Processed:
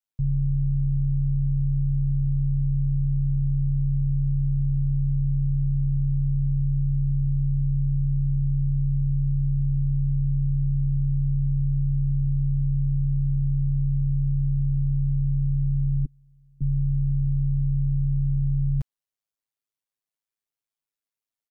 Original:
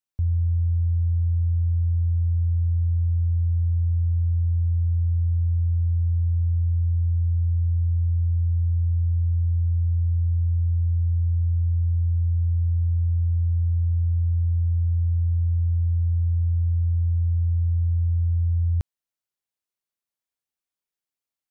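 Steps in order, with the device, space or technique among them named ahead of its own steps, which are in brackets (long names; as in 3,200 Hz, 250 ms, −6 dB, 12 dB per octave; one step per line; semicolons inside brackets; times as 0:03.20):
0:16.05–0:16.61: Butterworth high-pass 160 Hz 36 dB per octave
ring-modulated robot voice (ring modulation 53 Hz; comb filter 7.4 ms, depth 89%)
level −2.5 dB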